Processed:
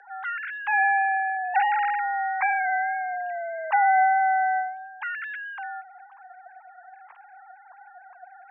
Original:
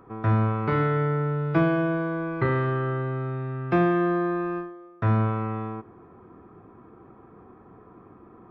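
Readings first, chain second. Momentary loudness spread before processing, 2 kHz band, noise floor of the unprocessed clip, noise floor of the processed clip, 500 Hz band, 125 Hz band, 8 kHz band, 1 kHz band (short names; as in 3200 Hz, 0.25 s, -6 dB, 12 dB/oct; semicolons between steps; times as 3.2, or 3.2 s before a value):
9 LU, +9.0 dB, -51 dBFS, -51 dBFS, -11.0 dB, under -40 dB, n/a, +9.5 dB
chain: sine-wave speech; frequency shift +370 Hz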